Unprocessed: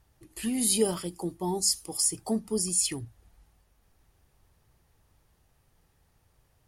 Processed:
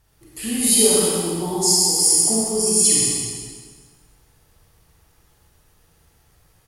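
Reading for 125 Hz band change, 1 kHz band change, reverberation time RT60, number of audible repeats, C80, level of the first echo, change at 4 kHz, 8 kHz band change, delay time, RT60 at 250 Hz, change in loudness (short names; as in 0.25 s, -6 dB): +8.0 dB, +8.5 dB, 1.5 s, 1, -2.0 dB, -4.0 dB, +12.0 dB, +13.0 dB, 0.128 s, 1.6 s, +11.5 dB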